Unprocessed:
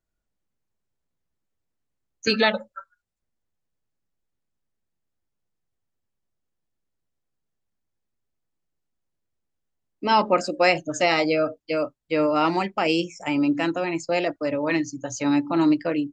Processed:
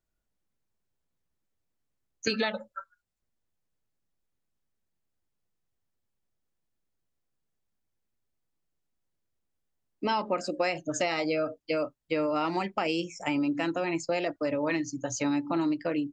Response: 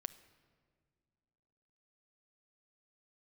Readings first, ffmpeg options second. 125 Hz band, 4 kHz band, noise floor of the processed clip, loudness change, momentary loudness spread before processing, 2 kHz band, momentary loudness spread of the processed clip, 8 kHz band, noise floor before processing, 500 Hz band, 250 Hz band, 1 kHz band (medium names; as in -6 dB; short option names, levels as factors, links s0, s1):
-6.0 dB, -7.5 dB, -81 dBFS, -7.0 dB, 7 LU, -7.5 dB, 4 LU, -2.0 dB, -80 dBFS, -6.5 dB, -6.5 dB, -8.0 dB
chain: -af "acompressor=threshold=0.0631:ratio=6,volume=0.891"